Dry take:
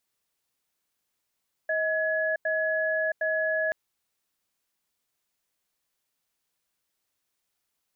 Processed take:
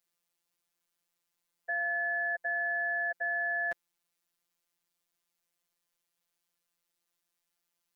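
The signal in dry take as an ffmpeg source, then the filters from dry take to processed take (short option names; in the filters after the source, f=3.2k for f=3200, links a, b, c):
-f lavfi -i "aevalsrc='0.0473*(sin(2*PI*634*t)+sin(2*PI*1690*t))*clip(min(mod(t,0.76),0.67-mod(t,0.76))/0.005,0,1)':d=2.03:s=44100"
-af "afftfilt=real='hypot(re,im)*cos(PI*b)':imag='0':win_size=1024:overlap=0.75"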